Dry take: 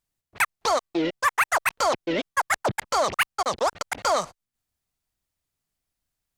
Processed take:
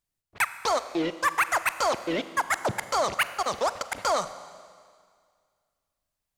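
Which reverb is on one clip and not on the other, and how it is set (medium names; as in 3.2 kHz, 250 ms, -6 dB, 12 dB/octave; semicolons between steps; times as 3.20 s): Schroeder reverb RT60 2 s, combs from 33 ms, DRR 12.5 dB; trim -2.5 dB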